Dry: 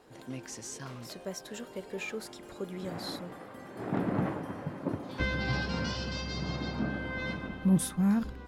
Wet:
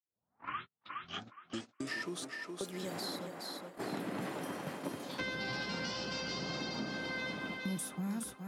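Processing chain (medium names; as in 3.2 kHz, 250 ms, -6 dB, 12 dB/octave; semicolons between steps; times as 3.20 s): tape start-up on the opening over 2.64 s; high-pass 190 Hz 12 dB/octave; treble shelf 3.7 kHz +7 dB; gate -41 dBFS, range -51 dB; compression 2:1, threshold -37 dBFS, peak gain reduction 8.5 dB; thinning echo 415 ms, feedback 20%, high-pass 310 Hz, level -6.5 dB; three bands compressed up and down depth 70%; trim -1.5 dB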